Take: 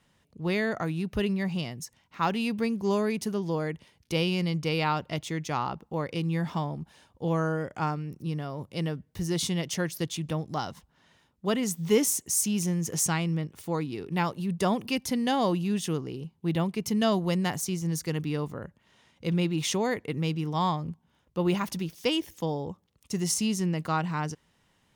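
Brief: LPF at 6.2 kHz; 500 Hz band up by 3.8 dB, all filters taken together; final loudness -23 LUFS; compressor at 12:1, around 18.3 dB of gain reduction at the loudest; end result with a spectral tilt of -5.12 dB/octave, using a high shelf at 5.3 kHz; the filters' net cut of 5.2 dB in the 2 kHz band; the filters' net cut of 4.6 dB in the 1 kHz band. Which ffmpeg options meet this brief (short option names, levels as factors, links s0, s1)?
-af "lowpass=6200,equalizer=f=500:t=o:g=6.5,equalizer=f=1000:t=o:g=-7.5,equalizer=f=2000:t=o:g=-6.5,highshelf=f=5300:g=8.5,acompressor=threshold=0.0251:ratio=12,volume=5.01"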